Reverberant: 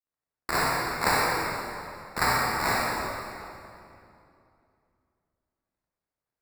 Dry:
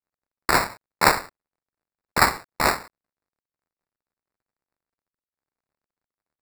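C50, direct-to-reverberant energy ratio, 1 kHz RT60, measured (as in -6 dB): -4.0 dB, -7.0 dB, 2.5 s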